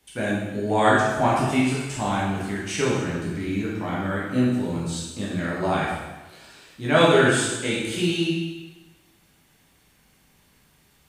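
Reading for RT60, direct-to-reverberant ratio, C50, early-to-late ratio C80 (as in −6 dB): 1.2 s, −7.0 dB, −0.5 dB, 2.0 dB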